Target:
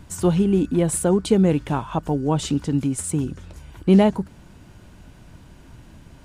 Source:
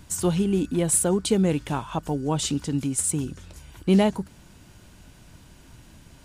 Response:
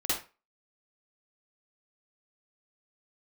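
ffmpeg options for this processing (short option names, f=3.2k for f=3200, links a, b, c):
-af "highshelf=f=2.7k:g=-9.5,volume=4.5dB"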